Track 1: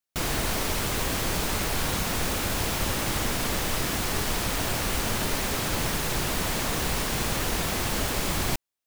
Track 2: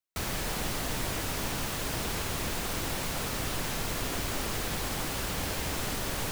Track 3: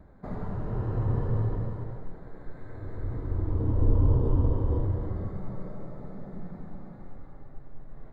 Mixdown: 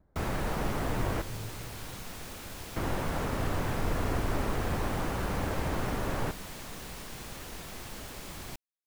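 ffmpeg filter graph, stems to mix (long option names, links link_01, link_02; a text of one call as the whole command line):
ffmpeg -i stem1.wav -i stem2.wav -i stem3.wav -filter_complex "[0:a]volume=-15.5dB[link_01];[1:a]lowpass=1500,volume=3dB,asplit=3[link_02][link_03][link_04];[link_02]atrim=end=1.22,asetpts=PTS-STARTPTS,afade=type=out:start_time=1.216:duration=0.004:curve=hsin[link_05];[link_03]atrim=start=1.22:end=2.76,asetpts=PTS-STARTPTS,volume=0[link_06];[link_04]atrim=start=2.76,asetpts=PTS-STARTPTS,afade=type=in:duration=0.004:curve=hsin[link_07];[link_05][link_06][link_07]concat=n=3:v=0:a=1[link_08];[2:a]volume=-13.5dB[link_09];[link_01][link_08][link_09]amix=inputs=3:normalize=0" out.wav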